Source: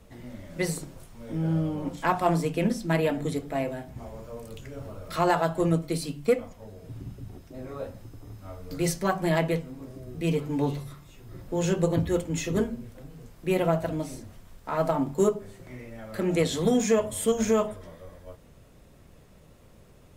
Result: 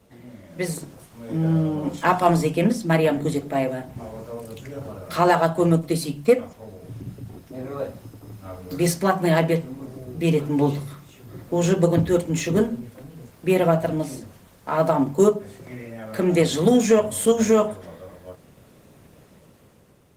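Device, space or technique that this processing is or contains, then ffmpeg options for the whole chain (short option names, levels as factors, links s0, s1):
video call: -filter_complex "[0:a]asplit=3[s0][s1][s2];[s0]afade=t=out:st=8.92:d=0.02[s3];[s1]highpass=f=45:w=0.5412,highpass=f=45:w=1.3066,afade=t=in:st=8.92:d=0.02,afade=t=out:st=9.5:d=0.02[s4];[s2]afade=t=in:st=9.5:d=0.02[s5];[s3][s4][s5]amix=inputs=3:normalize=0,highpass=100,dynaudnorm=f=190:g=9:m=2.24" -ar 48000 -c:a libopus -b:a 20k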